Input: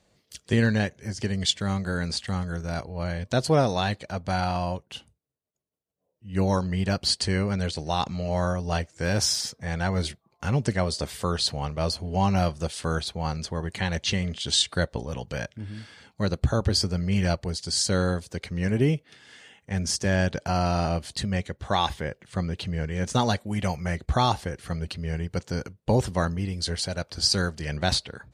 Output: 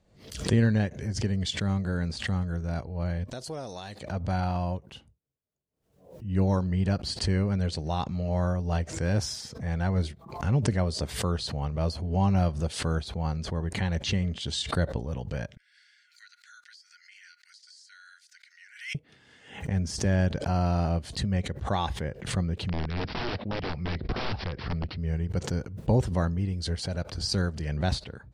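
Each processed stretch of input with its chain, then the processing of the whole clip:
0:03.32–0:04.01: bass and treble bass −9 dB, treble +13 dB + downward compressor 2.5 to 1, threshold −34 dBFS
0:15.57–0:18.95: Chebyshev high-pass with heavy ripple 1,400 Hz, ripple 6 dB + downward compressor 12 to 1, threshold −40 dBFS
0:22.69–0:25.02: phase distortion by the signal itself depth 0.4 ms + wrap-around overflow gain 21.5 dB + bad sample-rate conversion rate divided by 4×, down none, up filtered
whole clip: spectral tilt −2 dB per octave; background raised ahead of every attack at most 100 dB per second; level −5.5 dB

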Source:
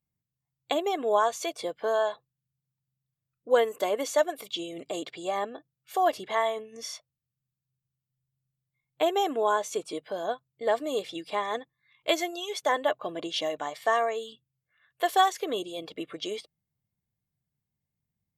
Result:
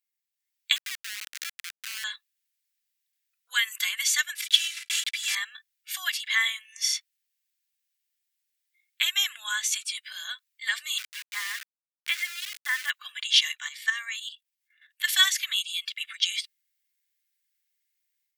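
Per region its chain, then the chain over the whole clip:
0:00.76–0:02.04: low-shelf EQ 340 Hz −9.5 dB + downward compressor 16 to 1, threshold −30 dBFS + comparator with hysteresis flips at −29.5 dBFS
0:04.35–0:05.37: one scale factor per block 3 bits + low-pass filter 9,600 Hz + comb filter 3 ms, depth 67%
0:10.98–0:12.90: low-pass filter 1,600 Hz + mains-hum notches 50/100/150/200/250/300/350/400/450/500 Hz + centre clipping without the shift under −38.5 dBFS
0:13.51–0:15.08: output level in coarse steps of 11 dB + parametric band 430 Hz −14.5 dB 0.59 octaves
whole clip: Butterworth high-pass 1,700 Hz 36 dB per octave; automatic gain control gain up to 8 dB; level +4.5 dB

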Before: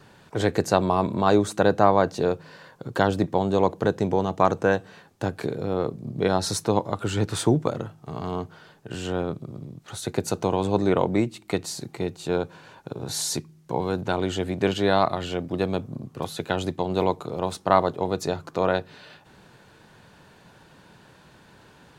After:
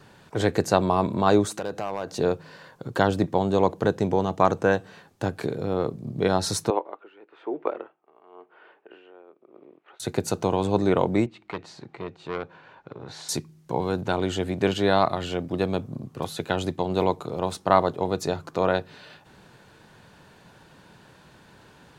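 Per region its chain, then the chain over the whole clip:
0:01.45–0:02.18: bass and treble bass −5 dB, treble +3 dB + downward compressor 2.5 to 1, threshold −28 dBFS + hard clipping −21.5 dBFS
0:06.70–0:10.00: Chebyshev band-pass filter 350–2,600 Hz, order 3 + tremolo with a sine in dB 1 Hz, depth 21 dB
0:11.26–0:13.29: low-pass filter 2,500 Hz + low-shelf EQ 400 Hz −8 dB + saturating transformer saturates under 1,100 Hz
whole clip: no processing

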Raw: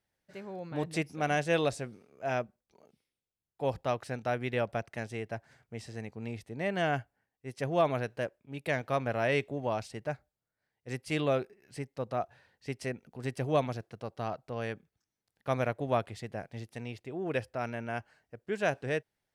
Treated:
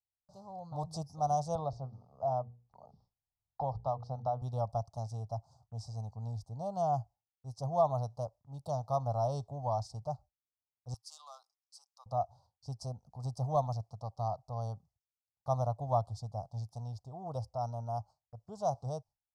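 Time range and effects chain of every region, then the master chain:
0:01.55–0:04.42: high-frequency loss of the air 260 metres + mains-hum notches 60/120/180/240/300/360/420/480 Hz + multiband upward and downward compressor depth 70%
0:10.94–0:12.06: high-pass filter 1,300 Hz 24 dB per octave + saturating transformer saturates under 2,800 Hz
whole clip: elliptic band-stop filter 750–5,100 Hz, stop band 60 dB; noise gate with hold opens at −58 dBFS; drawn EQ curve 110 Hz 0 dB, 360 Hz −26 dB, 1,200 Hz +14 dB, 2,700 Hz −1 dB, 4,700 Hz −3 dB, 12,000 Hz −16 dB; level +5.5 dB

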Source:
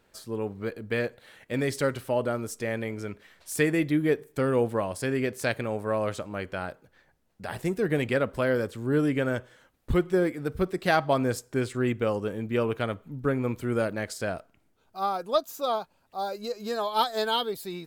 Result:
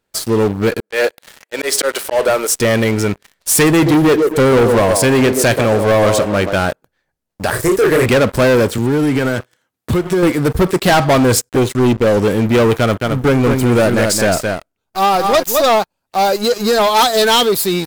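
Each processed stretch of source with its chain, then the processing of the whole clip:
0:00.80–0:02.55: high-pass filter 400 Hz 24 dB per octave + volume swells 138 ms
0:03.69–0:06.54: delay with a band-pass on its return 133 ms, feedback 32%, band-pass 570 Hz, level −6.5 dB + one half of a high-frequency compander decoder only
0:07.50–0:08.06: phaser with its sweep stopped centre 800 Hz, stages 6 + double-tracking delay 31 ms −3.5 dB
0:08.78–0:10.23: high-pass filter 89 Hz 24 dB per octave + notch filter 560 Hz, Q 9.4 + downward compressor 10 to 1, threshold −29 dBFS
0:11.49–0:12.17: flanger swept by the level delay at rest 11.4 ms, full sweep at −24.5 dBFS + notch comb filter 1,100 Hz + slack as between gear wheels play −44.5 dBFS
0:12.78–0:15.64: gain on one half-wave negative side −3 dB + single-tap delay 218 ms −7 dB
whole clip: bass and treble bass 0 dB, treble +5 dB; leveller curve on the samples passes 5; level +2 dB

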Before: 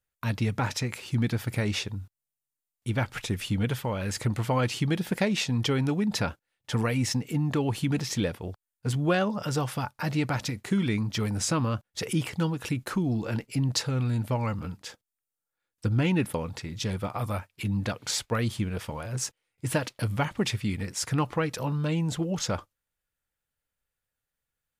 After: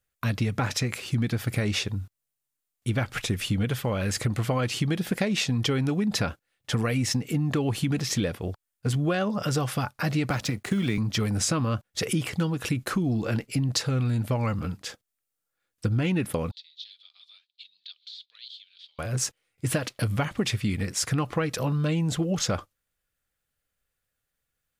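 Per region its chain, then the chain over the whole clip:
0:10.30–0:10.98: mu-law and A-law mismatch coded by A + multiband upward and downward compressor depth 40%
0:16.51–0:18.99: de-essing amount 85% + flat-topped band-pass 3,800 Hz, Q 3.7
whole clip: notch filter 910 Hz, Q 7.9; downward compressor, threshold −26 dBFS; level +4.5 dB

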